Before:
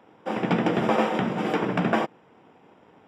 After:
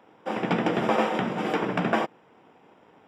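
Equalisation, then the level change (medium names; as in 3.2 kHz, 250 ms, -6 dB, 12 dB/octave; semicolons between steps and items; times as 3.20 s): bass shelf 270 Hz -4.5 dB; 0.0 dB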